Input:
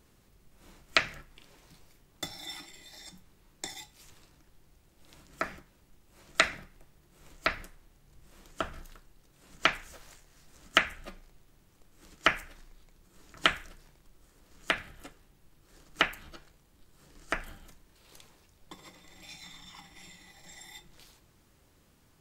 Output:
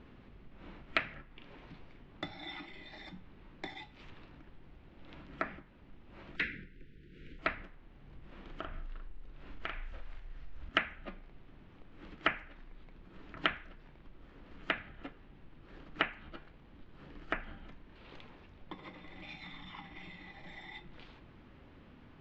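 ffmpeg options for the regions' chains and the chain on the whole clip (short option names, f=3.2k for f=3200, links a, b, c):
-filter_complex "[0:a]asettb=1/sr,asplit=3[a][b][c];[a]atrim=end=6.364[d];[b]atrim=start=6.36:end=7.39,asetpts=PTS-STARTPTS,afade=t=in:d=0.004:c=qsin,afade=t=out:st=1.026:d=0.004:c=qsin,asuperstop=centerf=860:order=12:qfactor=0.87,volume=23dB,asoftclip=hard,volume=-23dB[e];[c]atrim=start=7.386[f];[d][e]acrossfade=d=0.004:c1=hsin:c2=qsin[g];[g][f]acrossfade=d=0.004:c1=qsin:c2=hsin,asettb=1/sr,asplit=3[h][i][j];[h]atrim=end=8.424[k];[i]atrim=start=8.42:end=10.69,asetpts=PTS-STARTPTS,afade=t=in:d=0.004:c=qsin,afade=t=out:st=2.266:d=0.004:c=qsin,asubboost=boost=11.5:cutoff=69,acompressor=threshold=-46dB:ratio=2:attack=3.2:release=140:knee=1:detection=peak,asplit=2[l][m];[m]adelay=42,volume=-3dB[n];[l][n]amix=inputs=2:normalize=0,atrim=end_sample=100107[o];[j]atrim=start=10.686[p];[k][o]acrossfade=d=0.004:c1=hsin:c2=qsin[q];[q][p]acrossfade=d=0.004:c1=qsin:c2=hsin,lowpass=f=3.1k:w=0.5412,lowpass=f=3.1k:w=1.3066,equalizer=f=250:t=o:w=0.47:g=6,acompressor=threshold=-59dB:ratio=1.5,volume=7.5dB"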